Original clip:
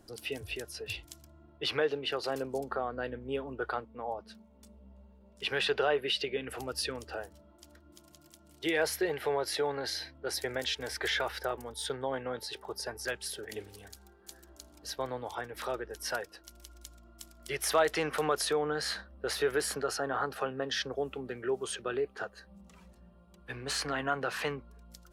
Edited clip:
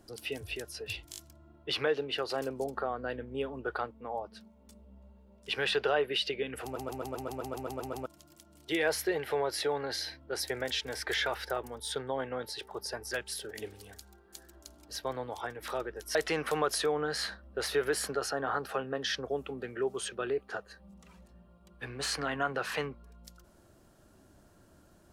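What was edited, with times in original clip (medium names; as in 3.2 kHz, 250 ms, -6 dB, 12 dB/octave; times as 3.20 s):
1.11 s: stutter 0.02 s, 4 plays
6.57 s: stutter in place 0.13 s, 11 plays
16.09–17.82 s: delete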